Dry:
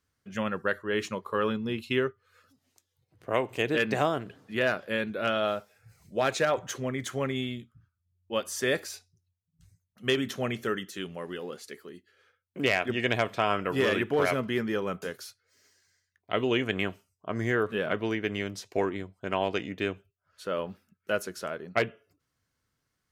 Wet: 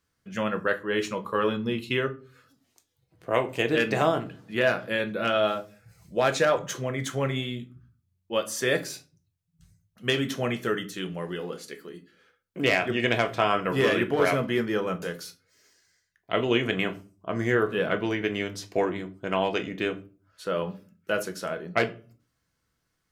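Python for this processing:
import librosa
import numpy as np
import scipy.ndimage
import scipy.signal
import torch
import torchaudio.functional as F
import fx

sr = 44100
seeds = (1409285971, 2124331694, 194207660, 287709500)

y = fx.room_shoebox(x, sr, seeds[0], volume_m3=190.0, walls='furnished', distance_m=0.73)
y = F.gain(torch.from_numpy(y), 2.0).numpy()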